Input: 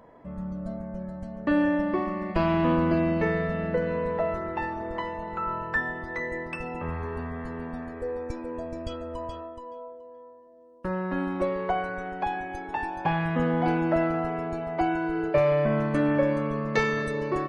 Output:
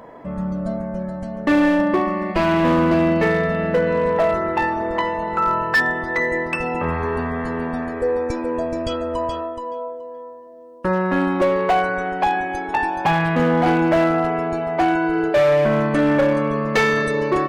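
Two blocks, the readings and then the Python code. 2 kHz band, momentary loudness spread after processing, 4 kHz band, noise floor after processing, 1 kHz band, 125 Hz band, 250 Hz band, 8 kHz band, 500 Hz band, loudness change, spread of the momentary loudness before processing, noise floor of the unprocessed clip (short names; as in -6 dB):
+10.0 dB, 10 LU, +11.5 dB, -35 dBFS, +9.5 dB, +5.5 dB, +7.5 dB, n/a, +8.5 dB, +8.0 dB, 13 LU, -47 dBFS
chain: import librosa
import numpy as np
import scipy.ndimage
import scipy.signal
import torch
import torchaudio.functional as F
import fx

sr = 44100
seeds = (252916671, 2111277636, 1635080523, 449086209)

p1 = fx.low_shelf(x, sr, hz=140.0, db=-8.5)
p2 = fx.rider(p1, sr, range_db=4, speed_s=2.0)
p3 = p1 + F.gain(torch.from_numpy(p2), 0.5).numpy()
p4 = np.clip(10.0 ** (16.0 / 20.0) * p3, -1.0, 1.0) / 10.0 ** (16.0 / 20.0)
y = F.gain(torch.from_numpy(p4), 4.0).numpy()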